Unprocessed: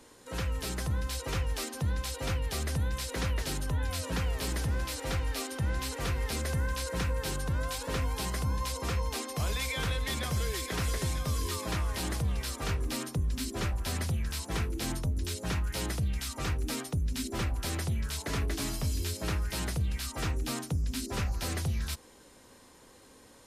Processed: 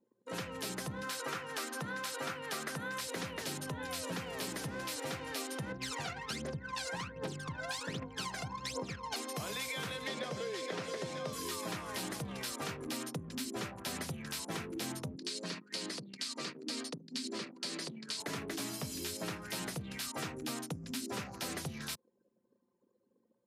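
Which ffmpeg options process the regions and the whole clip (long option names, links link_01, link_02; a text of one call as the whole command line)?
ffmpeg -i in.wav -filter_complex "[0:a]asettb=1/sr,asplit=3[link_01][link_02][link_03];[link_01]atrim=end=1.034[link_04];[link_02]atrim=start=1.03:end=3.01,asetpts=PTS-STARTPTS,afade=type=in:duration=0.004:curve=qsin,afade=type=out:start_time=1.976:duration=0.004:curve=qsin,highpass=150,equalizer=frequency=1400:width_type=o:width=0.88:gain=9[link_05];[link_03]atrim=start=3.006[link_06];[link_04][link_05]acrossfade=duration=0.004:curve1=hsin:curve2=qsin[link_07];[link_07][link_06]acrossfade=duration=0.004:curve1=qsin:curve2=hsin,asettb=1/sr,asplit=3[link_08][link_09][link_10];[link_08]atrim=end=5.724[link_11];[link_09]atrim=start=5.72:end=9.16,asetpts=PTS-STARTPTS,afade=type=in:duration=0.004:curve=qsin,afade=type=out:start_time=3.436:duration=0.004:curve=qsin,lowpass=7100,aphaser=in_gain=1:out_gain=1:delay=1.5:decay=0.78:speed=1.3:type=triangular,acompressor=threshold=-26dB:ratio=12:attack=3.2:release=140:knee=1:detection=peak[link_12];[link_10]atrim=start=9.156[link_13];[link_11][link_12]acrossfade=duration=0.004:curve1=hsin:curve2=qsin[link_14];[link_14][link_13]acrossfade=duration=0.004:curve1=qsin:curve2=hsin,asettb=1/sr,asplit=3[link_15][link_16][link_17];[link_15]atrim=end=10.074[link_18];[link_16]atrim=start=10.07:end=11.33,asetpts=PTS-STARTPTS,afade=type=in:duration=0.004:curve=qsin,afade=type=out:start_time=1.256:duration=0.004:curve=qsin,highpass=120,lowpass=5900,equalizer=frequency=520:width=2.1:gain=8.5[link_19];[link_17]atrim=start=11.326[link_20];[link_18][link_19]acrossfade=duration=0.004:curve1=hsin:curve2=qsin[link_21];[link_21][link_20]acrossfade=duration=0.004:curve1=qsin:curve2=hsin,asettb=1/sr,asplit=3[link_22][link_23][link_24];[link_22]atrim=end=15.154[link_25];[link_23]atrim=start=15.15:end=18.2,asetpts=PTS-STARTPTS,afade=type=in:duration=0.004:curve=qsin,afade=type=out:start_time=3.046:duration=0.004:curve=qsin,acompressor=threshold=-31dB:ratio=10:attack=3.2:release=140:knee=1:detection=peak,highpass=frequency=180:width=0.5412,highpass=frequency=180:width=1.3066,equalizer=frequency=790:width_type=q:width=4:gain=-9,equalizer=frequency=1400:width_type=q:width=4:gain=-4,equalizer=frequency=4500:width_type=q:width=4:gain=10,lowpass=frequency=9500:width=0.5412,lowpass=frequency=9500:width=1.3066,asplit=2[link_26][link_27];[link_27]adelay=73,lowpass=frequency=1600:poles=1,volume=-15.5dB,asplit=2[link_28][link_29];[link_29]adelay=73,lowpass=frequency=1600:poles=1,volume=0.5,asplit=2[link_30][link_31];[link_31]adelay=73,lowpass=frequency=1600:poles=1,volume=0.5,asplit=2[link_32][link_33];[link_33]adelay=73,lowpass=frequency=1600:poles=1,volume=0.5,asplit=2[link_34][link_35];[link_35]adelay=73,lowpass=frequency=1600:poles=1,volume=0.5[link_36];[link_26][link_28][link_30][link_32][link_34][link_36]amix=inputs=6:normalize=0,atrim=end_sample=134505[link_37];[link_24]atrim=start=18.196[link_38];[link_25][link_37]acrossfade=duration=0.004:curve1=hsin:curve2=qsin[link_39];[link_39][link_38]acrossfade=duration=0.004:curve1=qsin:curve2=hsin,anlmdn=0.0398,highpass=frequency=140:width=0.5412,highpass=frequency=140:width=1.3066,acompressor=threshold=-37dB:ratio=6,volume=1dB" out.wav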